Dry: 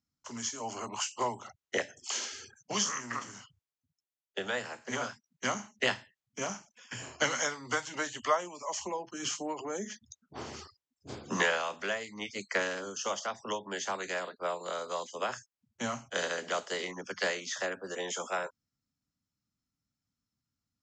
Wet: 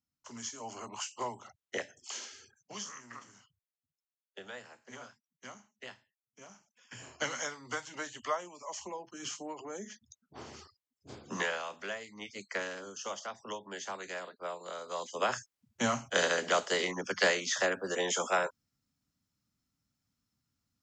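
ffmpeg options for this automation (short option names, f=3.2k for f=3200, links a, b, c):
-af "volume=17.5dB,afade=t=out:st=1.84:d=0.88:silence=0.473151,afade=t=out:st=4.48:d=1.26:silence=0.473151,afade=t=in:st=6.49:d=0.59:silence=0.237137,afade=t=in:st=14.85:d=0.51:silence=0.316228"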